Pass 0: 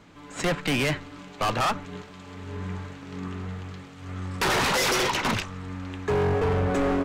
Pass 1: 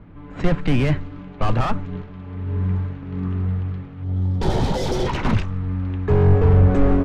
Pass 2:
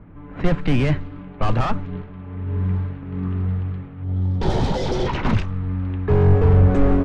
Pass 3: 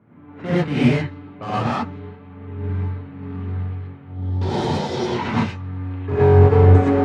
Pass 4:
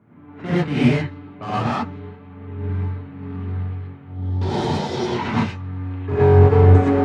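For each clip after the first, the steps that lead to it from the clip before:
low-pass that shuts in the quiet parts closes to 2,400 Hz, open at −22 dBFS; RIAA equalisation playback; gain on a spectral selection 0:04.04–0:05.07, 950–3,000 Hz −10 dB
low-pass that shuts in the quiet parts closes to 2,300 Hz, open at −10.5 dBFS
high-pass filter 100 Hz 24 dB per octave; reverb whose tail is shaped and stops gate 140 ms rising, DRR −8 dB; expander for the loud parts 1.5 to 1, over −19 dBFS; level −2.5 dB
notch filter 520 Hz, Q 12

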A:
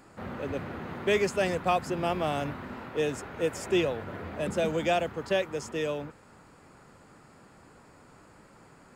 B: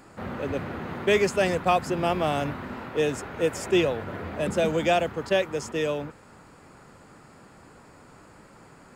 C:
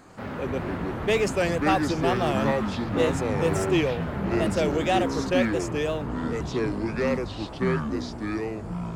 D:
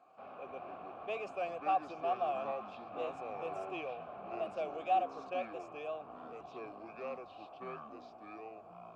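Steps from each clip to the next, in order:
level that may rise only so fast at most 600 dB per second; level +4 dB
tape wow and flutter 130 cents; soft clipping −15 dBFS, distortion −19 dB; delay with pitch and tempo change per echo 92 ms, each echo −6 semitones, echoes 3
formant filter a; level −3 dB

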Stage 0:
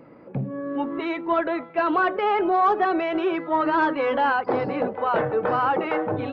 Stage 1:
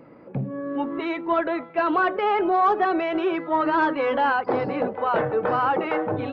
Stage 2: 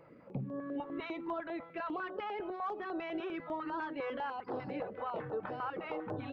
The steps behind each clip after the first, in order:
no processing that can be heard
downward compressor, threshold −27 dBFS, peak gain reduction 11 dB; notch on a step sequencer 10 Hz 250–2,200 Hz; level −7 dB

